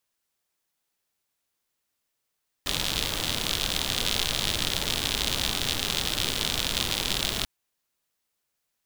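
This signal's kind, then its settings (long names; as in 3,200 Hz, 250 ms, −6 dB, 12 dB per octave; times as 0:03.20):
rain-like ticks over hiss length 4.79 s, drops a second 86, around 3,500 Hz, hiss −2 dB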